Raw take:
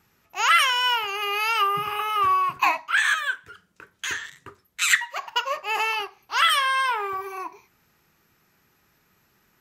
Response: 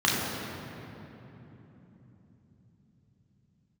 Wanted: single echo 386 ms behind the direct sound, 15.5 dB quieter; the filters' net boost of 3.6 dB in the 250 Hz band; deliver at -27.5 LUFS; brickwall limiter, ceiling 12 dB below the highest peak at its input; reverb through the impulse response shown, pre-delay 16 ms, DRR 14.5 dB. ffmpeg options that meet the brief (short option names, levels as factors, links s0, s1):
-filter_complex "[0:a]equalizer=f=250:t=o:g=7,alimiter=limit=0.133:level=0:latency=1,aecho=1:1:386:0.168,asplit=2[s0][s1];[1:a]atrim=start_sample=2205,adelay=16[s2];[s1][s2]afir=irnorm=-1:irlink=0,volume=0.0299[s3];[s0][s3]amix=inputs=2:normalize=0,volume=0.794"